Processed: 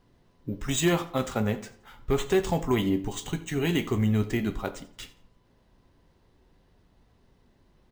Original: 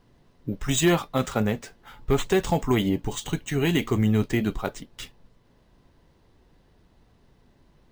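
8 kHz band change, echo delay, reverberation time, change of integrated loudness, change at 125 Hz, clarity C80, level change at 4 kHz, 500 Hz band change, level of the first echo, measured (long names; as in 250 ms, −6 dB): −3.0 dB, 86 ms, 0.55 s, −2.5 dB, −3.0 dB, 16.5 dB, −3.0 dB, −2.0 dB, −19.5 dB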